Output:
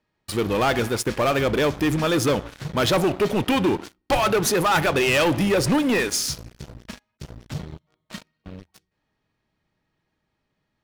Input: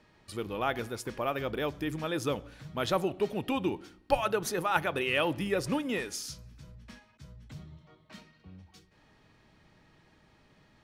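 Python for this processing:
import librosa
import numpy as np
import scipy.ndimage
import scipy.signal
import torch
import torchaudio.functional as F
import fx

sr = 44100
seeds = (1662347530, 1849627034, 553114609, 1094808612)

y = fx.leveller(x, sr, passes=5)
y = y * 10.0 ** (-3.5 / 20.0)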